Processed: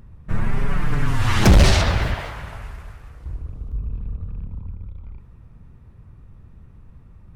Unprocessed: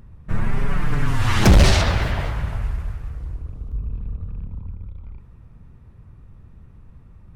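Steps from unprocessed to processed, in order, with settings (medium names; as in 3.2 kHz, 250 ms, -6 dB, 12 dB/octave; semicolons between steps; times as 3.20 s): 2.14–3.26 s: bass shelf 300 Hz -11 dB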